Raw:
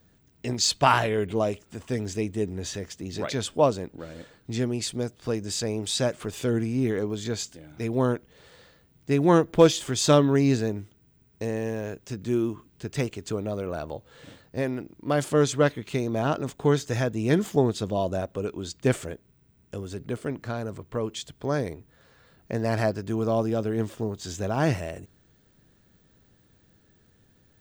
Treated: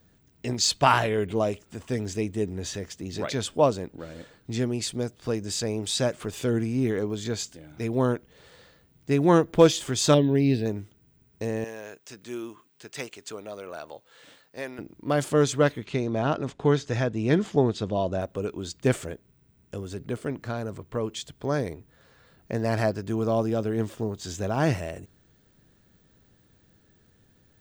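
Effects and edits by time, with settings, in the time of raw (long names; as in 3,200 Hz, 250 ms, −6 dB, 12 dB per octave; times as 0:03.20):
0:10.14–0:10.66: phaser with its sweep stopped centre 3,000 Hz, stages 4
0:11.64–0:14.79: high-pass filter 1,000 Hz 6 dB per octave
0:15.85–0:18.21: low-pass filter 5,400 Hz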